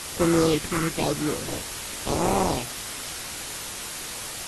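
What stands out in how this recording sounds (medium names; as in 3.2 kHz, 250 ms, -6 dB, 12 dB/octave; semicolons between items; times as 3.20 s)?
aliases and images of a low sample rate 1.7 kHz, jitter 20%; phasing stages 4, 0.97 Hz, lowest notch 630–4100 Hz; a quantiser's noise floor 6-bit, dither triangular; AAC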